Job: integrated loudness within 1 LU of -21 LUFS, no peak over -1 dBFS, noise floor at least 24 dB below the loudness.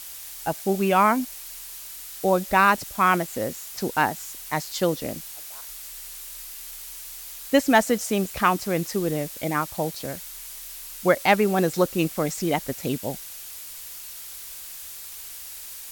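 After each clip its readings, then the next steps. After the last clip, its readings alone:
noise floor -39 dBFS; noise floor target -48 dBFS; loudness -24.0 LUFS; peak level -5.5 dBFS; loudness target -21.0 LUFS
-> noise reduction 9 dB, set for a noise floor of -39 dBFS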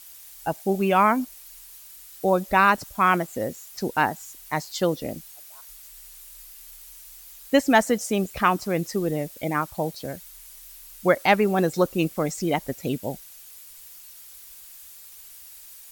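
noise floor -46 dBFS; noise floor target -48 dBFS
-> noise reduction 6 dB, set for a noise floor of -46 dBFS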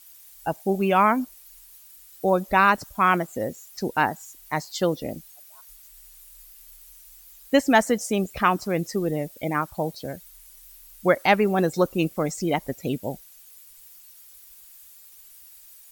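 noise floor -50 dBFS; loudness -24.0 LUFS; peak level -5.5 dBFS; loudness target -21.0 LUFS
-> trim +3 dB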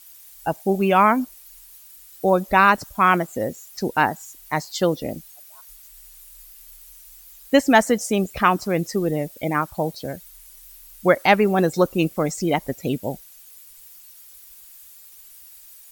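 loudness -21.0 LUFS; peak level -2.5 dBFS; noise floor -47 dBFS

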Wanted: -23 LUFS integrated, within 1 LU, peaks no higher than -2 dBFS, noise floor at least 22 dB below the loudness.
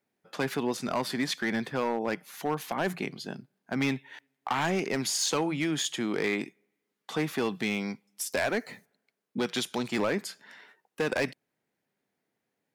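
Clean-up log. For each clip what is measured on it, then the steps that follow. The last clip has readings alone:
clipped samples 1.4%; clipping level -21.5 dBFS; loudness -31.0 LUFS; peak level -21.5 dBFS; loudness target -23.0 LUFS
-> clip repair -21.5 dBFS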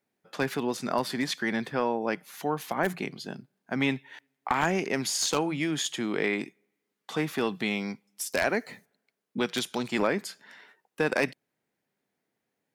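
clipped samples 0.0%; loudness -29.5 LUFS; peak level -12.5 dBFS; loudness target -23.0 LUFS
-> trim +6.5 dB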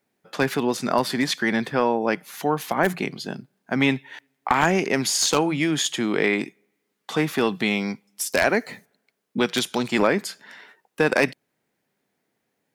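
loudness -23.0 LUFS; peak level -6.0 dBFS; noise floor -76 dBFS

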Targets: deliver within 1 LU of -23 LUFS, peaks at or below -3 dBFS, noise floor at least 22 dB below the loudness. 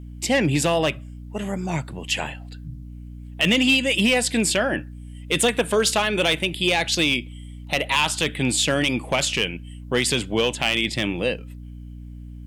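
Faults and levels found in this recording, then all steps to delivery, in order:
clipped samples 0.3%; clipping level -11.5 dBFS; hum 60 Hz; highest harmonic 300 Hz; hum level -35 dBFS; loudness -21.5 LUFS; peak level -11.5 dBFS; loudness target -23.0 LUFS
-> clip repair -11.5 dBFS; hum notches 60/120/180/240/300 Hz; trim -1.5 dB

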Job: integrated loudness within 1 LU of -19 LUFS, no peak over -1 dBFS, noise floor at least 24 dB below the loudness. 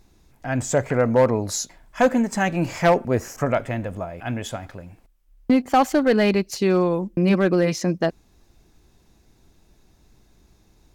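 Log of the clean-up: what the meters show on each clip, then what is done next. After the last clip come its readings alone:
clipped samples 1.0%; clipping level -10.0 dBFS; loudness -21.5 LUFS; peak level -10.0 dBFS; loudness target -19.0 LUFS
-> clip repair -10 dBFS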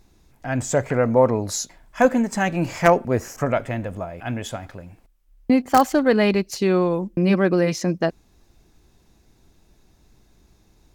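clipped samples 0.0%; loudness -21.0 LUFS; peak level -1.0 dBFS; loudness target -19.0 LUFS
-> trim +2 dB; peak limiter -1 dBFS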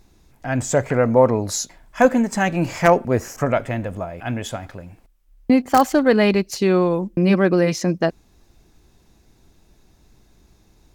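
loudness -19.0 LUFS; peak level -1.0 dBFS; noise floor -57 dBFS

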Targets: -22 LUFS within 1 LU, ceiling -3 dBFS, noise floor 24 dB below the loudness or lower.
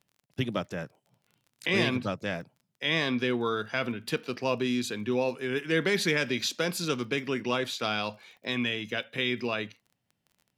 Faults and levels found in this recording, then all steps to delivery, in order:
tick rate 27 per s; loudness -29.5 LUFS; peak level -12.5 dBFS; loudness target -22.0 LUFS
-> de-click; trim +7.5 dB

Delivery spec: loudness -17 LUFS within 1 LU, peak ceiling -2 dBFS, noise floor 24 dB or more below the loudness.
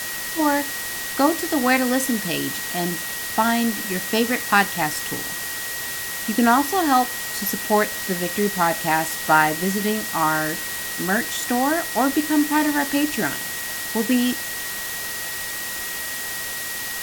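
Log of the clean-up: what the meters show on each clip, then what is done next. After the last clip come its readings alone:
steady tone 1.9 kHz; tone level -32 dBFS; noise floor -29 dBFS; noise floor target -46 dBFS; loudness -21.5 LUFS; peak level -3.5 dBFS; loudness target -17.0 LUFS
-> band-stop 1.9 kHz, Q 30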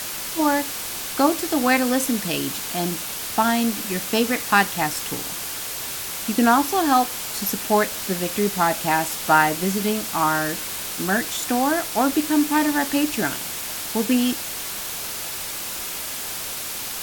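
steady tone not found; noise floor -31 dBFS; noise floor target -46 dBFS
-> noise reduction 15 dB, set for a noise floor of -31 dBFS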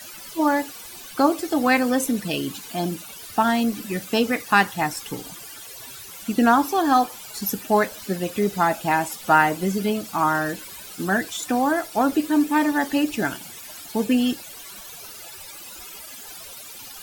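noise floor -40 dBFS; noise floor target -47 dBFS
-> noise reduction 7 dB, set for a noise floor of -40 dBFS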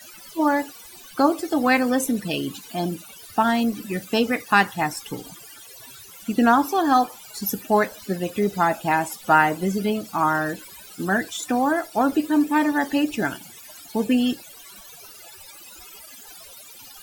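noise floor -44 dBFS; noise floor target -47 dBFS
-> noise reduction 6 dB, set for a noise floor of -44 dBFS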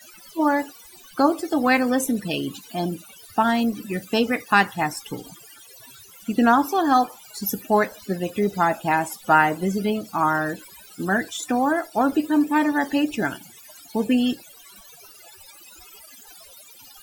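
noise floor -47 dBFS; loudness -22.5 LUFS; peak level -4.5 dBFS; loudness target -17.0 LUFS
-> trim +5.5 dB; peak limiter -2 dBFS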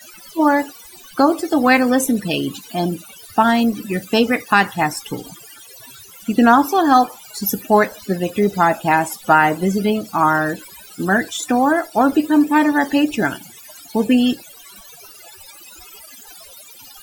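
loudness -17.0 LUFS; peak level -2.0 dBFS; noise floor -42 dBFS

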